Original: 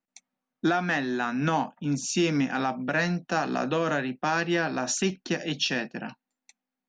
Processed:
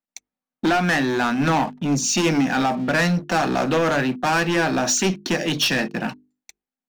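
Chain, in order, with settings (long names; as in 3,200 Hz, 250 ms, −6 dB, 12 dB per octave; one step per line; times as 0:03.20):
leveller curve on the samples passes 3
mains-hum notches 50/100/150/200/250/300/350/400/450 Hz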